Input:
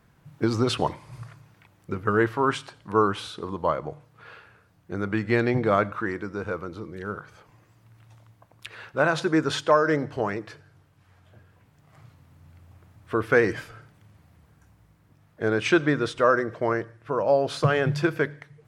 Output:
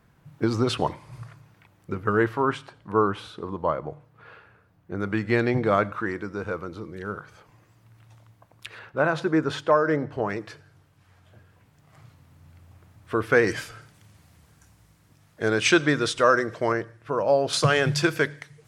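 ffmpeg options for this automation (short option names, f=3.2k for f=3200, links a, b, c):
-af "asetnsamples=n=441:p=0,asendcmd='2.42 equalizer g -8.5;5 equalizer g 1;8.79 equalizer g -8;10.3 equalizer g 3;13.47 equalizer g 11;16.72 equalizer g 4;17.53 equalizer g 13.5',equalizer=f=7.6k:t=o:w=2.6:g=-1.5"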